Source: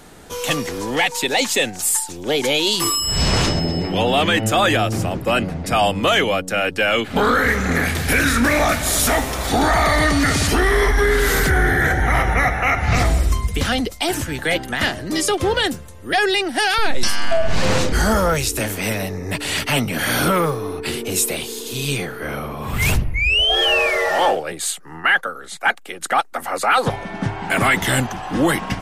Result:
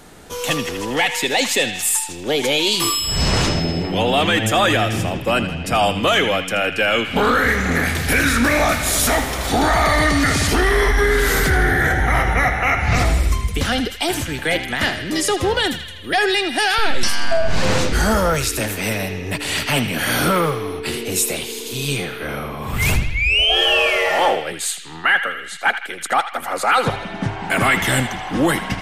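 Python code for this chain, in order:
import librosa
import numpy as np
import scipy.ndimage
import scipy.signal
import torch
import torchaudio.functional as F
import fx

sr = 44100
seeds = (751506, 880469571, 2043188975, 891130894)

y = fx.echo_banded(x, sr, ms=80, feedback_pct=75, hz=2700.0, wet_db=-8.5)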